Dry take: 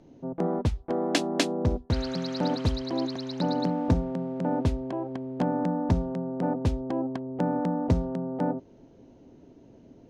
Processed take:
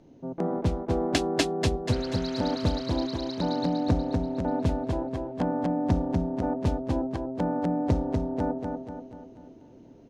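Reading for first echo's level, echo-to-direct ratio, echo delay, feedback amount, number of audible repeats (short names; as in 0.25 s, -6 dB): -4.5 dB, -3.5 dB, 0.242 s, 48%, 5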